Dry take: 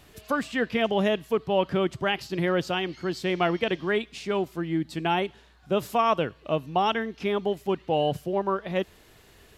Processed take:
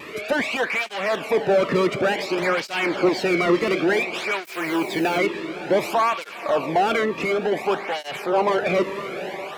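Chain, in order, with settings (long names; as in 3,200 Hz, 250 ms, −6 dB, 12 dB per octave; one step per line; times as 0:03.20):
parametric band 2,300 Hz +14 dB 0.21 octaves
brickwall limiter −15.5 dBFS, peak gain reduction 8 dB
mid-hump overdrive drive 35 dB, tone 1,100 Hz, clips at −6.5 dBFS
feedback delay with all-pass diffusion 487 ms, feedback 68%, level −13 dB
pitch vibrato 3.8 Hz 54 cents
0:02.42–0:03.09: low-shelf EQ 460 Hz +7.5 dB
0:04.45–0:05.18: bit-depth reduction 6 bits, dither none
0:07.03–0:07.52: downward compressor, threshold −17 dBFS, peak gain reduction 5 dB
through-zero flanger with one copy inverted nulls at 0.56 Hz, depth 1.4 ms
level −1.5 dB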